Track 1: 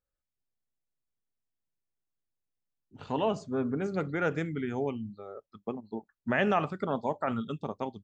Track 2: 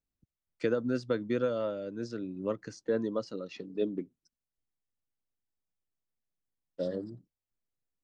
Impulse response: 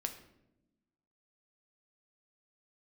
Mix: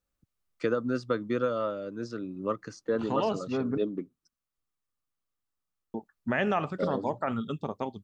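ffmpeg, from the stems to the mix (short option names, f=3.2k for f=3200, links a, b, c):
-filter_complex "[0:a]acompressor=threshold=-33dB:ratio=1.5,volume=3dB,asplit=3[a][b][c];[a]atrim=end=3.78,asetpts=PTS-STARTPTS,afade=t=out:st=3.776:d=0.004:c=hsin[d];[b]atrim=start=3.78:end=5.94,asetpts=PTS-STARTPTS,volume=0[e];[c]atrim=start=5.94,asetpts=PTS-STARTPTS,afade=t=in:d=0.004:c=hsin[f];[d][e][f]concat=n=3:v=0:a=1[g];[1:a]equalizer=f=1.2k:t=o:w=0.35:g=11,volume=1dB[h];[g][h]amix=inputs=2:normalize=0"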